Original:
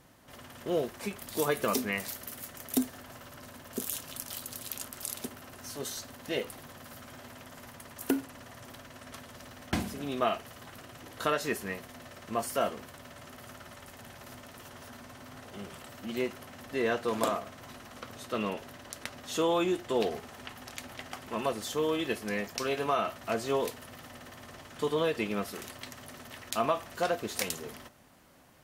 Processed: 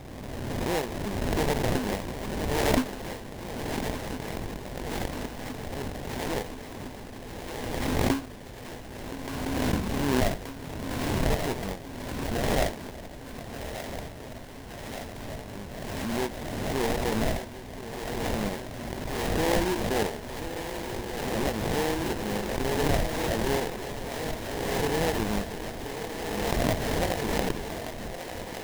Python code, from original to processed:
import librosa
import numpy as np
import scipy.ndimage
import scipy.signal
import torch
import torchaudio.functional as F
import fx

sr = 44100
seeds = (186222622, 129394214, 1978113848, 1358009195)

p1 = x + fx.echo_swing(x, sr, ms=1363, ratio=3, feedback_pct=75, wet_db=-14.0, dry=0)
p2 = fx.sample_hold(p1, sr, seeds[0], rate_hz=1300.0, jitter_pct=20)
p3 = fx.low_shelf(p2, sr, hz=96.0, db=9.5)
p4 = fx.echo_thinned(p3, sr, ms=1177, feedback_pct=77, hz=470.0, wet_db=-9.5)
y = fx.pre_swell(p4, sr, db_per_s=24.0)